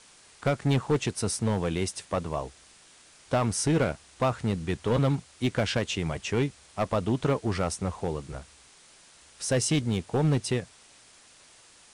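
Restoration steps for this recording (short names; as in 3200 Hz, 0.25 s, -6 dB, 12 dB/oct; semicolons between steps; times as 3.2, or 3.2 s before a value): clip repair -18.5 dBFS; noise print and reduce 17 dB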